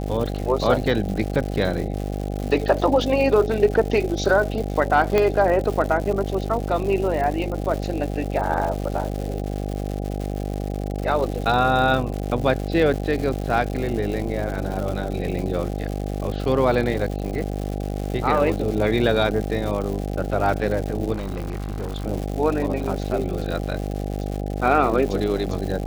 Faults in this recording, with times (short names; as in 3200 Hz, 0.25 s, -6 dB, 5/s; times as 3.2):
buzz 50 Hz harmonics 16 -27 dBFS
crackle 210/s -28 dBFS
5.18 pop -7 dBFS
21.12–22.06 clipped -24 dBFS